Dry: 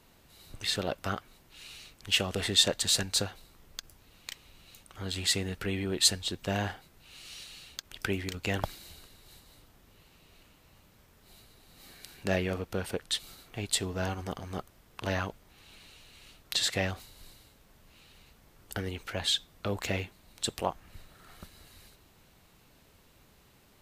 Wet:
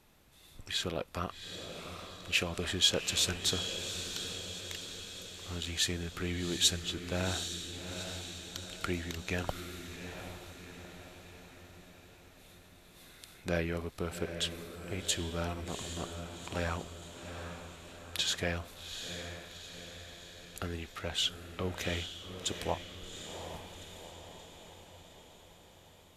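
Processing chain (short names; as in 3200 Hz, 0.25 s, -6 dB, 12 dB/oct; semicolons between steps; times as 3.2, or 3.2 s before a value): diffused feedback echo 0.71 s, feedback 57%, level -8 dB; varispeed -9%; gain -3.5 dB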